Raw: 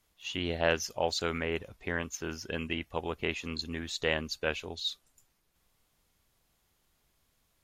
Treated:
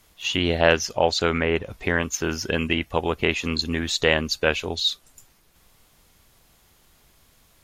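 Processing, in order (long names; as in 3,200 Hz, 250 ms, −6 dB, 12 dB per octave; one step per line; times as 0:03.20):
0:00.75–0:01.68: high-shelf EQ 11,000 Hz → 5,800 Hz −12 dB
in parallel at +0.5 dB: downward compressor, threshold −41 dBFS, peak gain reduction 18.5 dB
on the sum: level +8.5 dB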